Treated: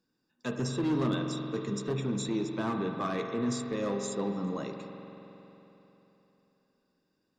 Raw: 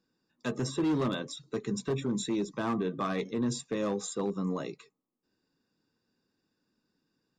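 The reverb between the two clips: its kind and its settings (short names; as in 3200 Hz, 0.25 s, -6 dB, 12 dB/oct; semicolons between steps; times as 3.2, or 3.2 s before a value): spring tank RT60 3.5 s, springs 45 ms, chirp 30 ms, DRR 3.5 dB; gain -1.5 dB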